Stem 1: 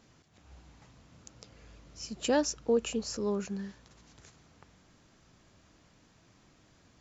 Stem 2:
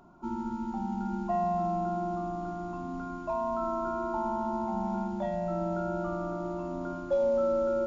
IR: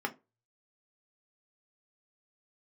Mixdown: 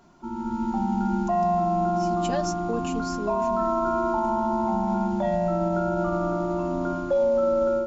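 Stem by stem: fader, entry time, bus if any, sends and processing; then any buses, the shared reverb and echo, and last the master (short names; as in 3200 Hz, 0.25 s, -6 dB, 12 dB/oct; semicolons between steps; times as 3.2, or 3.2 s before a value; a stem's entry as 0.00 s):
-4.0 dB, 0.00 s, no send, comb 5 ms, depth 86%
-0.5 dB, 0.00 s, no send, AGC gain up to 9 dB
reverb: off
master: limiter -16 dBFS, peak gain reduction 5.5 dB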